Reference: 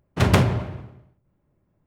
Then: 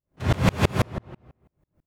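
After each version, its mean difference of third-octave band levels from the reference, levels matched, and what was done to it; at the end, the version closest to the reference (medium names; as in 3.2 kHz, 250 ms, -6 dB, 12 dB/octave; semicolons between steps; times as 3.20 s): 12.5 dB: on a send: delay 150 ms -23.5 dB; on the sum: gated-style reverb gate 490 ms flat, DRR -1 dB; sawtooth tremolo in dB swelling 6.1 Hz, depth 35 dB; trim +5.5 dB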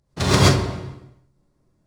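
7.0 dB: median filter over 5 samples; high-order bell 6.3 kHz +11.5 dB; gated-style reverb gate 150 ms rising, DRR -7.5 dB; trim -5 dB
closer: second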